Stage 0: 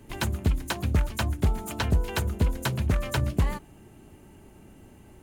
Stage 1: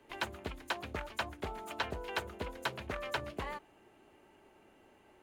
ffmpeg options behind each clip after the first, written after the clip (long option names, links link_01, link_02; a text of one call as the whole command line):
ffmpeg -i in.wav -filter_complex "[0:a]acrossover=split=360 4400:gain=0.112 1 0.224[link_01][link_02][link_03];[link_01][link_02][link_03]amix=inputs=3:normalize=0,volume=-4dB" out.wav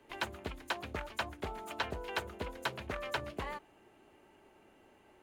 ffmpeg -i in.wav -af anull out.wav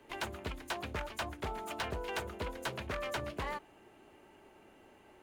ffmpeg -i in.wav -af "asoftclip=type=hard:threshold=-35dB,volume=3dB" out.wav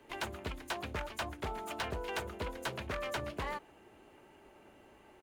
ffmpeg -i in.wav -filter_complex "[0:a]asplit=2[link_01][link_02];[link_02]adelay=1516,volume=-29dB,highshelf=frequency=4000:gain=-34.1[link_03];[link_01][link_03]amix=inputs=2:normalize=0" out.wav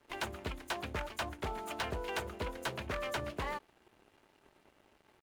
ffmpeg -i in.wav -af "aeval=exprs='sgn(val(0))*max(abs(val(0))-0.00106,0)':channel_layout=same,volume=1dB" out.wav